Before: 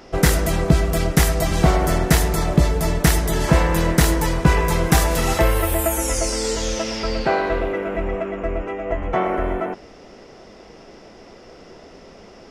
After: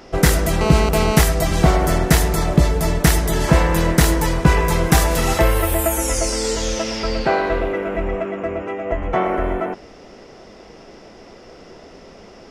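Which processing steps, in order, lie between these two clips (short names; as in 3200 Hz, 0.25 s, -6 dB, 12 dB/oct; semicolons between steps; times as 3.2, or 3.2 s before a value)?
0.61–1.21 GSM buzz -22 dBFS; 8.25–8.92 HPF 81 Hz 24 dB/oct; gain +1.5 dB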